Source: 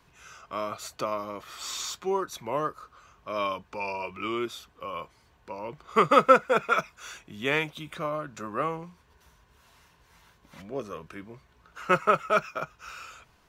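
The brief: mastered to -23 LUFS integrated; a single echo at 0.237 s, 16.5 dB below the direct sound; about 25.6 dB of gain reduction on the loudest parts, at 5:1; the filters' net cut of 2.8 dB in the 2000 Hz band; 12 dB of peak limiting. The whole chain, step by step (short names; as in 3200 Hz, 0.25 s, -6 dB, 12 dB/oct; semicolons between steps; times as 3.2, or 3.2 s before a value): bell 2000 Hz -4 dB; compressor 5:1, threshold -43 dBFS; limiter -40 dBFS; echo 0.237 s -16.5 dB; gain +27.5 dB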